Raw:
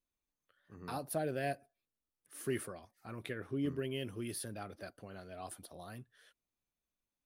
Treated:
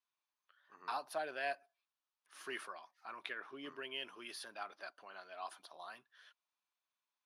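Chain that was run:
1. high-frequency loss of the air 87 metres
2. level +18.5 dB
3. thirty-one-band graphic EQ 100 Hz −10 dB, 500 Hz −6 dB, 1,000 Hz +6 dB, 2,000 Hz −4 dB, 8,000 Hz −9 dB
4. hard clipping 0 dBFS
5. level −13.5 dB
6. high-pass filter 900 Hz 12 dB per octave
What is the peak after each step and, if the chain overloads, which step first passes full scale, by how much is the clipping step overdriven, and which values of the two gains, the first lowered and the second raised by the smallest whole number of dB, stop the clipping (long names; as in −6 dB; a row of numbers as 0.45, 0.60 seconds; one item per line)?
−23.5, −5.0, −5.5, −5.5, −19.0, −24.0 dBFS
no step passes full scale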